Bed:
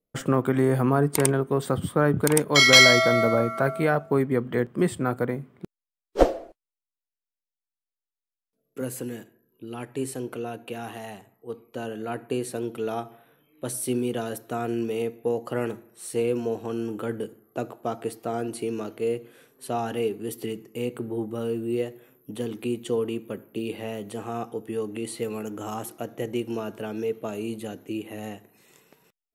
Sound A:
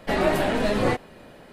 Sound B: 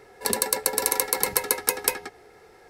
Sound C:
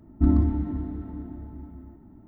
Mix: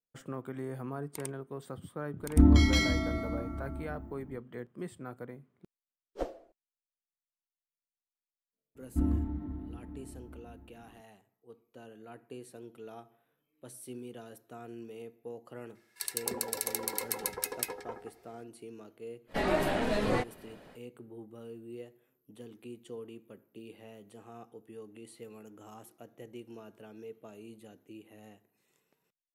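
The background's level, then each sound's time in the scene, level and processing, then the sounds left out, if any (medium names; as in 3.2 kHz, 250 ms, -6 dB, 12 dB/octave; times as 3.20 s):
bed -17.5 dB
2.16 s: add C -0.5 dB, fades 0.05 s
8.75 s: add C -9.5 dB
15.75 s: add B -10.5 dB + bands offset in time highs, lows 260 ms, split 1.4 kHz
19.27 s: add A -7 dB, fades 0.05 s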